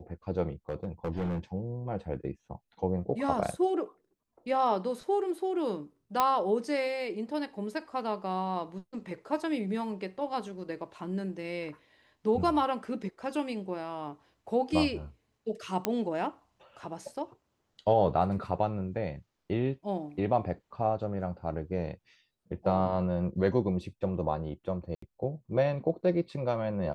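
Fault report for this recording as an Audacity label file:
0.690000	1.390000	clipped -27 dBFS
6.200000	6.200000	pop -11 dBFS
15.850000	15.850000	pop -12 dBFS
24.950000	25.020000	dropout 74 ms

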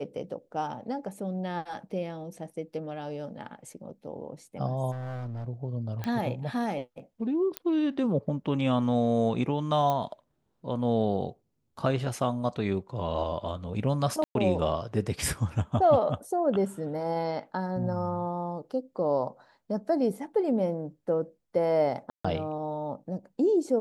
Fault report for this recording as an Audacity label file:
4.910000	5.450000	clipped -32.5 dBFS
6.040000	6.040000	pop -19 dBFS
7.570000	7.570000	pop -14 dBFS
9.900000	9.900000	pop -16 dBFS
14.240000	14.350000	dropout 112 ms
22.100000	22.250000	dropout 145 ms

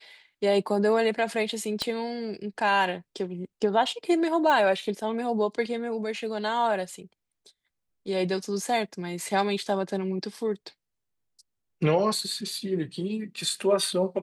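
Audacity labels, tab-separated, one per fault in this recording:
1.820000	1.820000	pop -14 dBFS
4.500000	4.500000	pop -14 dBFS

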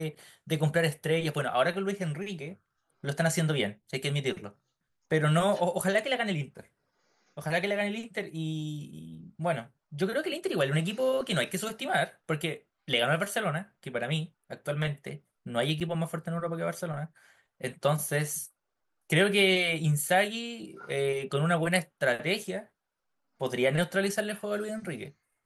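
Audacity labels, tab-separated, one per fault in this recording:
15.800000	15.810000	dropout 6.7 ms

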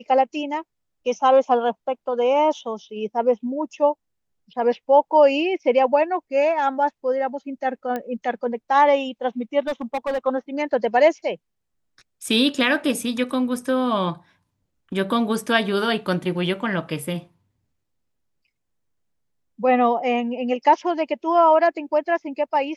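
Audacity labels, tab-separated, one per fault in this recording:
7.960000	7.960000	pop -15 dBFS
9.670000	10.270000	clipped -20 dBFS

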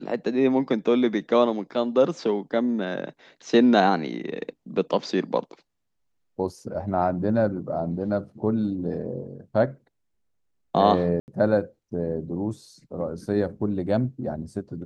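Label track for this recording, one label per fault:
11.200000	11.280000	dropout 79 ms

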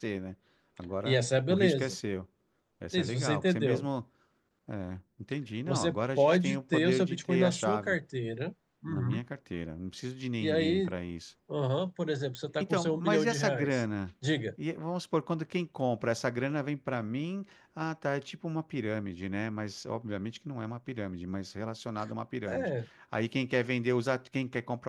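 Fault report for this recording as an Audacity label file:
12.350000	12.350000	pop -23 dBFS

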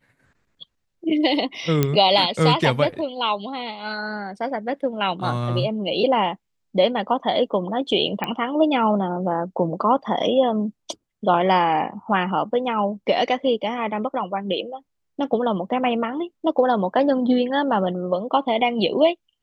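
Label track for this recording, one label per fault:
1.830000	1.830000	pop -5 dBFS
8.240000	8.240000	pop -12 dBFS

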